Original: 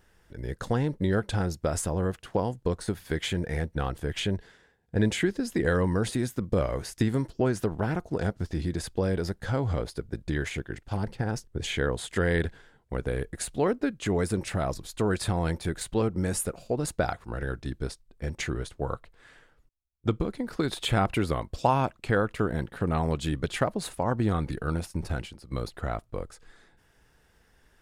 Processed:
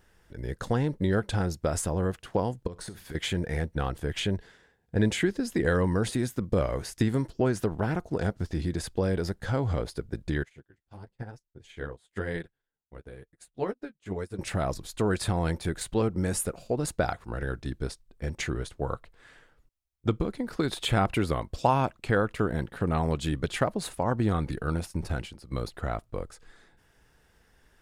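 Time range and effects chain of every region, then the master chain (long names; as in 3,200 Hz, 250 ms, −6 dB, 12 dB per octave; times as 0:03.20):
0:02.67–0:03.15: downward compressor 12 to 1, threshold −35 dBFS + flutter between parallel walls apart 11.1 metres, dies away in 0.24 s
0:10.43–0:14.39: flanger 1 Hz, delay 5.4 ms, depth 8.5 ms, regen −24% + expander for the loud parts 2.5 to 1, over −45 dBFS
whole clip: no processing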